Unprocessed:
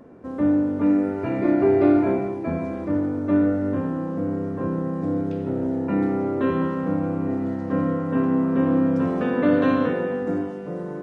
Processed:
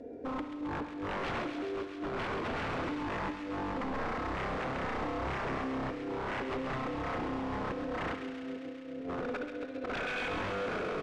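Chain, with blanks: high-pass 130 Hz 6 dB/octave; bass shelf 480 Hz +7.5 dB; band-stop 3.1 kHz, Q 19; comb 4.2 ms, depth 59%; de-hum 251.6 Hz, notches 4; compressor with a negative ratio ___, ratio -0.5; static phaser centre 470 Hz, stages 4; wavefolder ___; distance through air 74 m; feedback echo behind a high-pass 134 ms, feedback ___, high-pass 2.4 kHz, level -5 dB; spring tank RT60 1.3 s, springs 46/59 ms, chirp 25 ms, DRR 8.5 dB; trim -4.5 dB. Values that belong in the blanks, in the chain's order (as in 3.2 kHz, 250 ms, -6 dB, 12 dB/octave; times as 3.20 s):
-20 dBFS, -26 dBFS, 81%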